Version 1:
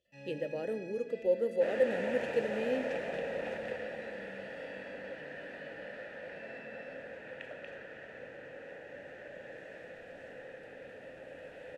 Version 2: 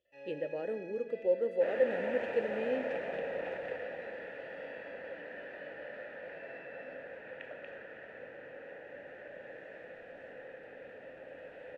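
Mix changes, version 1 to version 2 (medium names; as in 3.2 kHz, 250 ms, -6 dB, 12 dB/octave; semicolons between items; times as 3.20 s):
first sound: add resonant low shelf 280 Hz -10.5 dB, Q 3; master: add tone controls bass -5 dB, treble -14 dB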